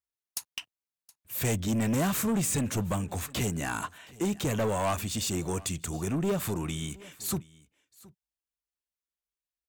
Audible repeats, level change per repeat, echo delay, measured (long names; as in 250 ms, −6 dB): 1, repeats not evenly spaced, 720 ms